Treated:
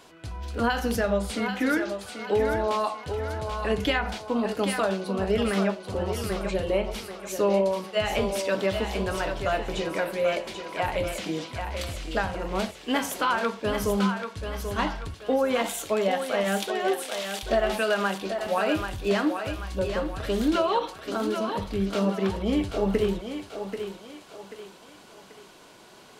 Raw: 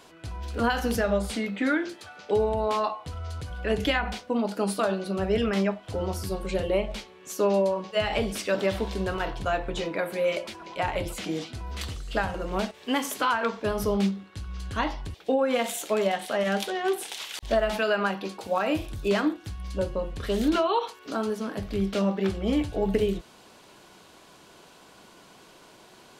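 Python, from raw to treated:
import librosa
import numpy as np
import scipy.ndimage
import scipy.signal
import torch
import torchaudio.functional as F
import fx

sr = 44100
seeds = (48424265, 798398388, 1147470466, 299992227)

y = fx.echo_thinned(x, sr, ms=786, feedback_pct=45, hz=350.0, wet_db=-6.0)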